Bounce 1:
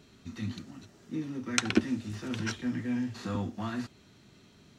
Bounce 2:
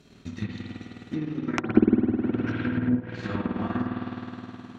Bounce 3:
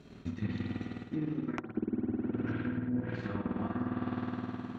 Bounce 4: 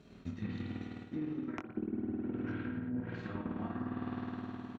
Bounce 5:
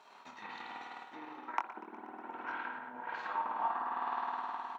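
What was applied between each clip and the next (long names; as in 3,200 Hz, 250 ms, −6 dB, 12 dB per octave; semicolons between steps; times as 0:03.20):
spring reverb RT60 3.5 s, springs 52 ms, chirp 35 ms, DRR −5 dB; transient designer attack +7 dB, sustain −7 dB; treble cut that deepens with the level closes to 820 Hz, closed at −20 dBFS
high-shelf EQ 3,100 Hz −11 dB; reversed playback; downward compressor 10 to 1, threshold −32 dBFS, peak gain reduction 21.5 dB; reversed playback; level +2 dB
double-tracking delay 23 ms −7.5 dB; level −4.5 dB
high-pass with resonance 910 Hz, resonance Q 6.6; feedback echo with a swinging delay time 121 ms, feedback 79%, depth 106 cents, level −19.5 dB; level +3.5 dB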